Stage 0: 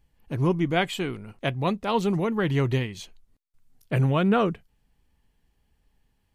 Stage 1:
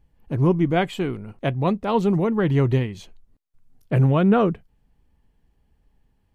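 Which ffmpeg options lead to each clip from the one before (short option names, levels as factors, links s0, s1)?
-af "tiltshelf=f=1500:g=5"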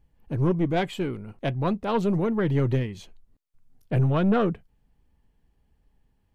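-af "aeval=exprs='(tanh(4.47*val(0)+0.35)-tanh(0.35))/4.47':c=same,volume=0.841"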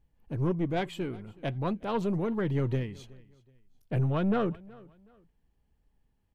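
-af "aecho=1:1:372|744:0.0708|0.0219,volume=0.531"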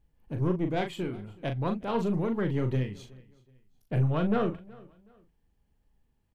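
-filter_complex "[0:a]asplit=2[s0][s1];[s1]adelay=39,volume=0.447[s2];[s0][s2]amix=inputs=2:normalize=0"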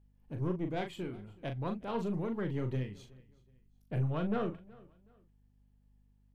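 -af "aeval=exprs='val(0)+0.00112*(sin(2*PI*50*n/s)+sin(2*PI*2*50*n/s)/2+sin(2*PI*3*50*n/s)/3+sin(2*PI*4*50*n/s)/4+sin(2*PI*5*50*n/s)/5)':c=same,volume=0.473"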